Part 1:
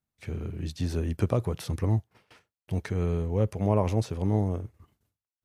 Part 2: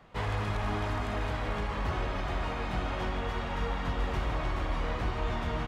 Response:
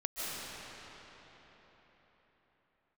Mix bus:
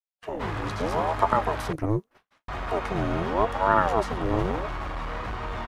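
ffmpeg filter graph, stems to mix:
-filter_complex "[0:a]aeval=exprs='val(0)*sin(2*PI*490*n/s+490*0.6/0.81*sin(2*PI*0.81*n/s))':channel_layout=same,volume=1.5dB[link_01];[1:a]asoftclip=type=hard:threshold=-28.5dB,adelay=250,volume=-1dB,asplit=3[link_02][link_03][link_04];[link_02]atrim=end=1.73,asetpts=PTS-STARTPTS,afade=type=out:start_time=1.726:duration=0.004:curve=hsin[link_05];[link_03]atrim=start=1.73:end=2.48,asetpts=PTS-STARTPTS,volume=0[link_06];[link_04]atrim=start=2.48,asetpts=PTS-STARTPTS,afade=type=in:duration=0.004:curve=hsin[link_07];[link_05][link_06][link_07]concat=n=3:v=0:a=1[link_08];[link_01][link_08]amix=inputs=2:normalize=0,agate=range=-33dB:threshold=-47dB:ratio=3:detection=peak,equalizer=frequency=1200:width_type=o:width=1.5:gain=6.5"

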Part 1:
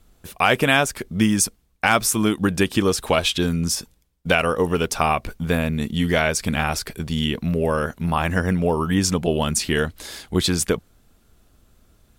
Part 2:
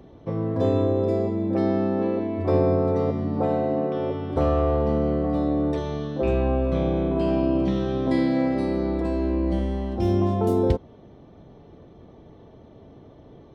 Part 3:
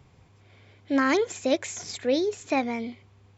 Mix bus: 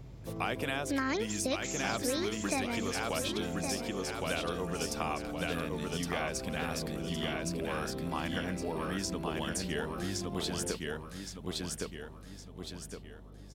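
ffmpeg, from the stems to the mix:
ffmpeg -i stem1.wav -i stem2.wav -i stem3.wav -filter_complex "[0:a]volume=-13.5dB,asplit=2[link_01][link_02];[link_02]volume=-3.5dB[link_03];[1:a]acompressor=threshold=-25dB:ratio=6,volume=-10.5dB[link_04];[2:a]equalizer=frequency=120:width=1.5:gain=14,volume=-2.5dB,asplit=2[link_05][link_06];[link_06]volume=-11.5dB[link_07];[link_03][link_07]amix=inputs=2:normalize=0,aecho=0:1:1114|2228|3342|4456|5570:1|0.39|0.152|0.0593|0.0231[link_08];[link_01][link_04][link_05][link_08]amix=inputs=4:normalize=0,equalizer=frequency=5000:width_type=o:width=0.97:gain=3.5,acrossover=split=110|1000[link_09][link_10][link_11];[link_09]acompressor=threshold=-52dB:ratio=4[link_12];[link_10]acompressor=threshold=-33dB:ratio=4[link_13];[link_11]acompressor=threshold=-34dB:ratio=4[link_14];[link_12][link_13][link_14]amix=inputs=3:normalize=0,aeval=exprs='val(0)+0.00316*(sin(2*PI*50*n/s)+sin(2*PI*2*50*n/s)/2+sin(2*PI*3*50*n/s)/3+sin(2*PI*4*50*n/s)/4+sin(2*PI*5*50*n/s)/5)':channel_layout=same" out.wav

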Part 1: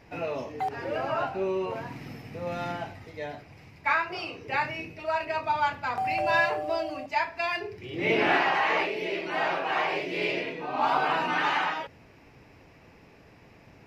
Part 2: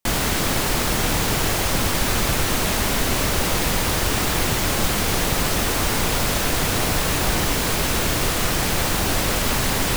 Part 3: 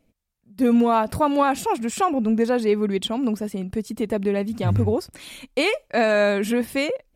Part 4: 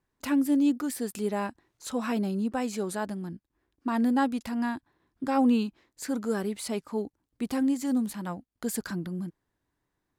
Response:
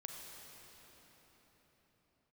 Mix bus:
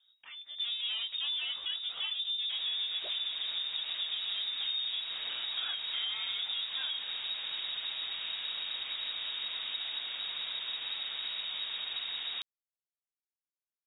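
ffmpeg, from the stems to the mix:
-filter_complex "[1:a]adelay=2450,volume=-14.5dB[link_01];[2:a]aphaser=in_gain=1:out_gain=1:delay=4.7:decay=0.22:speed=1.6:type=triangular,asoftclip=type=tanh:threshold=-23.5dB,flanger=delay=15.5:depth=3.4:speed=0.55,volume=-2dB,asplit=2[link_02][link_03];[link_03]volume=-10dB[link_04];[3:a]volume=-6.5dB,highpass=740,alimiter=level_in=11.5dB:limit=-24dB:level=0:latency=1:release=34,volume=-11.5dB,volume=0dB[link_05];[4:a]atrim=start_sample=2205[link_06];[link_04][link_06]afir=irnorm=-1:irlink=0[link_07];[link_01][link_02][link_05][link_07]amix=inputs=4:normalize=0,highshelf=frequency=2100:gain=-10,lowpass=frequency=3200:width_type=q:width=0.5098,lowpass=frequency=3200:width_type=q:width=0.6013,lowpass=frequency=3200:width_type=q:width=0.9,lowpass=frequency=3200:width_type=q:width=2.563,afreqshift=-3800,acompressor=threshold=-33dB:ratio=4"

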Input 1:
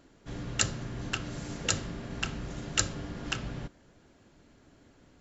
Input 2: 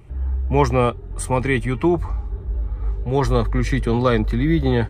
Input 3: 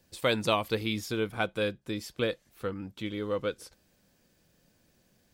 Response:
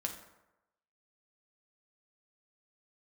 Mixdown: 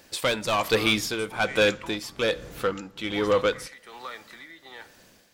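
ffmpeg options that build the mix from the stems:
-filter_complex "[0:a]acompressor=threshold=-35dB:ratio=6,volume=-3.5dB[link_01];[1:a]highpass=1100,acompressor=threshold=-34dB:ratio=3,volume=-5.5dB,asplit=2[link_02][link_03];[link_03]volume=-7.5dB[link_04];[2:a]asplit=2[link_05][link_06];[link_06]highpass=frequency=720:poles=1,volume=20dB,asoftclip=type=tanh:threshold=-11dB[link_07];[link_05][link_07]amix=inputs=2:normalize=0,lowpass=frequency=7400:poles=1,volume=-6dB,volume=0.5dB,asplit=2[link_08][link_09];[link_09]volume=-12.5dB[link_10];[3:a]atrim=start_sample=2205[link_11];[link_04][link_10]amix=inputs=2:normalize=0[link_12];[link_12][link_11]afir=irnorm=-1:irlink=0[link_13];[link_01][link_02][link_08][link_13]amix=inputs=4:normalize=0,tremolo=f=1.2:d=0.65"

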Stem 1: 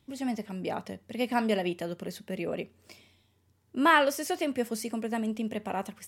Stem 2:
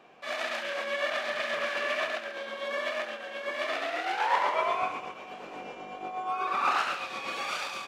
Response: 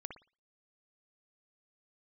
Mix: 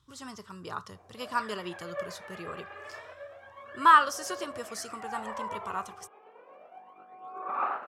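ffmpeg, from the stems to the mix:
-filter_complex "[0:a]firequalizer=gain_entry='entry(120,0);entry(230,-17);entry(370,-7);entry(720,-16);entry(1100,11);entry(2200,-13);entry(3200,-2);entry(6100,2);entry(14000,-10)':delay=0.05:min_phase=1,volume=0.5dB[link_01];[1:a]lowpass=1200,aphaser=in_gain=1:out_gain=1:delay=2.5:decay=0.72:speed=0.3:type=sinusoidal,highpass=frequency=570:poles=1,adelay=950,volume=-12dB,asplit=2[link_02][link_03];[link_03]volume=-4dB[link_04];[2:a]atrim=start_sample=2205[link_05];[link_04][link_05]afir=irnorm=-1:irlink=0[link_06];[link_01][link_02][link_06]amix=inputs=3:normalize=0"

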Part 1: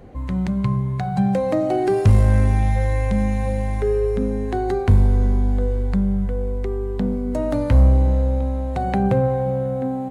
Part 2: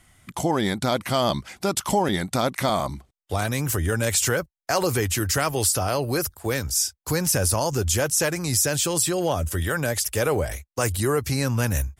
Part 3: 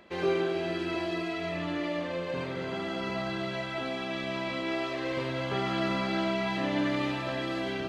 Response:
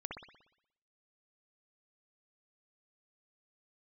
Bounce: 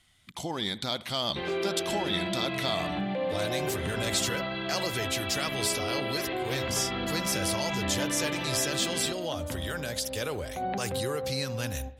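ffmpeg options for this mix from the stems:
-filter_complex "[0:a]highpass=190,adelay=1800,volume=-4dB,asplit=3[link_01][link_02][link_03];[link_01]atrim=end=4.3,asetpts=PTS-STARTPTS,afade=type=out:start_time=4.296:duration=0.004:curve=hsin[link_04];[link_02]atrim=start=4.3:end=5.43,asetpts=PTS-STARTPTS,volume=0[link_05];[link_03]atrim=start=5.43,asetpts=PTS-STARTPTS,afade=type=in:duration=0.004:curve=hsin[link_06];[link_04][link_05][link_06]concat=n=3:v=0:a=1,asplit=2[link_07][link_08];[link_08]volume=-19dB[link_09];[1:a]volume=-13dB,asplit=3[link_10][link_11][link_12];[link_11]volume=-13dB[link_13];[2:a]adelay=1250,volume=-2.5dB,asplit=2[link_14][link_15];[link_15]volume=-11.5dB[link_16];[link_12]apad=whole_len=524818[link_17];[link_07][link_17]sidechaincompress=threshold=-55dB:ratio=3:attack=16:release=115[link_18];[link_18][link_14]amix=inputs=2:normalize=0,lowpass=2700,alimiter=level_in=1.5dB:limit=-24dB:level=0:latency=1:release=105,volume=-1.5dB,volume=0dB[link_19];[3:a]atrim=start_sample=2205[link_20];[link_09][link_13][link_16]amix=inputs=3:normalize=0[link_21];[link_21][link_20]afir=irnorm=-1:irlink=0[link_22];[link_10][link_19][link_22]amix=inputs=3:normalize=0,equalizer=frequency=3700:width_type=o:width=1.1:gain=13.5"

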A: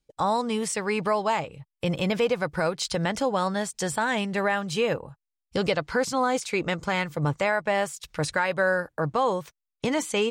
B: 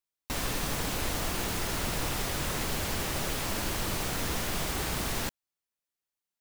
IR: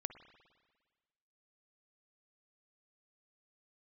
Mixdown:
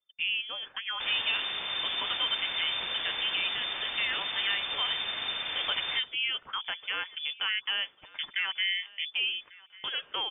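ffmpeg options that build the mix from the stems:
-filter_complex "[0:a]volume=-5.5dB,asplit=2[link_01][link_02];[link_02]volume=-22.5dB[link_03];[1:a]adelay=700,volume=-0.5dB[link_04];[link_03]aecho=0:1:1145|2290|3435|4580|5725:1|0.33|0.109|0.0359|0.0119[link_05];[link_01][link_04][link_05]amix=inputs=3:normalize=0,equalizer=frequency=210:width_type=o:width=1.2:gain=-11.5,lowpass=frequency=3100:width_type=q:width=0.5098,lowpass=frequency=3100:width_type=q:width=0.6013,lowpass=frequency=3100:width_type=q:width=0.9,lowpass=frequency=3100:width_type=q:width=2.563,afreqshift=-3600"

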